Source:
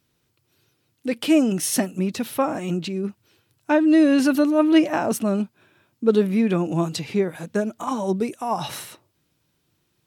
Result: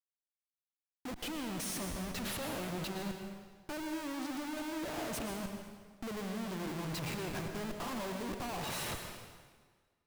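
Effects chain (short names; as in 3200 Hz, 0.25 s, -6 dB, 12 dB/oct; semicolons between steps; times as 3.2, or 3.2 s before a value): compressor 8:1, threshold -25 dBFS, peak gain reduction 14 dB; Schmitt trigger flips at -40.5 dBFS; reverb RT60 1.6 s, pre-delay 0.104 s, DRR 4.5 dB; gain -9 dB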